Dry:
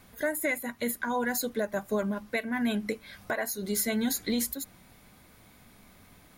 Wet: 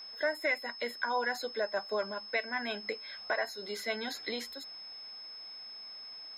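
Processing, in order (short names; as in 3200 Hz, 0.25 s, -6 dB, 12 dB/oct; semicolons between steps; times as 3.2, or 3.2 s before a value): three-band isolator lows -22 dB, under 410 Hz, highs -24 dB, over 4600 Hz; whine 5200 Hz -44 dBFS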